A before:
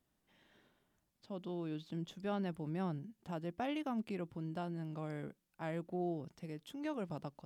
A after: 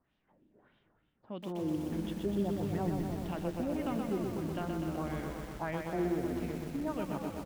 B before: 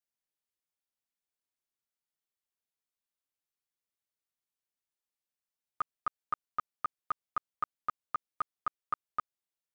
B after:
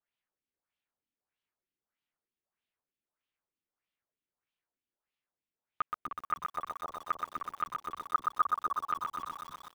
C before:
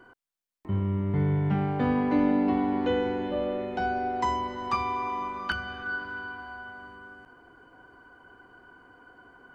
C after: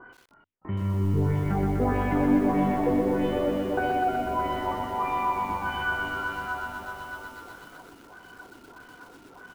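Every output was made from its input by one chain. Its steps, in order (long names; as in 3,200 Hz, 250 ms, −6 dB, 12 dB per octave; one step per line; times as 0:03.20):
in parallel at +0.5 dB: downward compressor 20 to 1, threshold −37 dBFS
on the sum: auto-filter low-pass sine 1.6 Hz 280–3,200 Hz
echo with shifted repeats 307 ms, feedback 36%, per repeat −98 Hz, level −9 dB
feedback echo at a low word length 124 ms, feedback 80%, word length 8 bits, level −4 dB
level −4 dB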